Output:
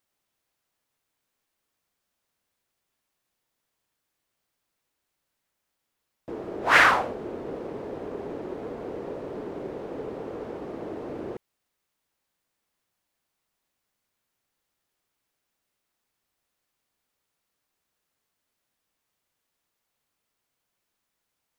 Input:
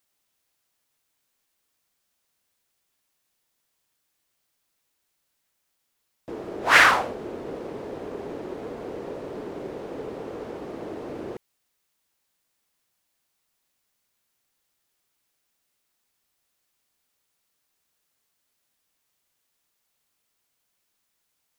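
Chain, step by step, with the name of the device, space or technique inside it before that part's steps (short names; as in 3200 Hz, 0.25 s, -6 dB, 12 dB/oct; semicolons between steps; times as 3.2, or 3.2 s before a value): behind a face mask (high shelf 2700 Hz -7 dB)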